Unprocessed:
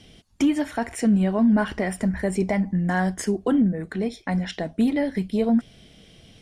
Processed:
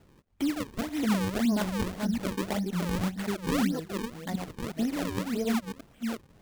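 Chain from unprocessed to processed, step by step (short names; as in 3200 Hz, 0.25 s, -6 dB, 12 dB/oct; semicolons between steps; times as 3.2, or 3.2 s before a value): reverse delay 0.363 s, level -4 dB; decimation with a swept rate 37×, swing 160% 1.8 Hz; gain -8.5 dB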